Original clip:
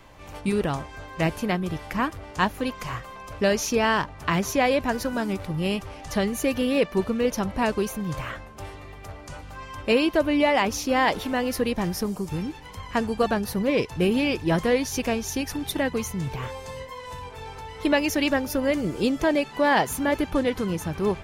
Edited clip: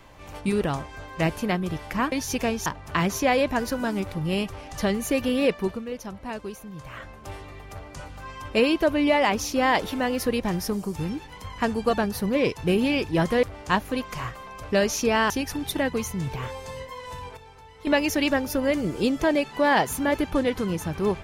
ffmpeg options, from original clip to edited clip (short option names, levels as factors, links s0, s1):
-filter_complex "[0:a]asplit=9[s0][s1][s2][s3][s4][s5][s6][s7][s8];[s0]atrim=end=2.122[s9];[s1]atrim=start=14.758:end=15.302[s10];[s2]atrim=start=3.988:end=7.18,asetpts=PTS-STARTPTS,afade=t=out:st=2.862:d=0.33:silence=0.316228[s11];[s3]atrim=start=7.18:end=8.19,asetpts=PTS-STARTPTS,volume=0.316[s12];[s4]atrim=start=8.19:end=14.762,asetpts=PTS-STARTPTS,afade=t=in:d=0.33:silence=0.316228[s13];[s5]atrim=start=2.118:end=3.992[s14];[s6]atrim=start=15.298:end=17.372[s15];[s7]atrim=start=17.368:end=17.872,asetpts=PTS-STARTPTS,volume=0.316[s16];[s8]atrim=start=17.868[s17];[s9][s10]acrossfade=d=0.004:c1=hsin:c2=hsin[s18];[s11][s12][s13]concat=n=3:v=0:a=1[s19];[s18][s19]acrossfade=d=0.004:c1=hsin:c2=hsin[s20];[s20][s14]acrossfade=d=0.004:c1=hsin:c2=hsin[s21];[s21][s15]acrossfade=d=0.004:c1=hsin:c2=hsin[s22];[s22][s16]acrossfade=d=0.004:c1=hsin:c2=hsin[s23];[s23][s17]acrossfade=d=0.004:c1=hsin:c2=hsin"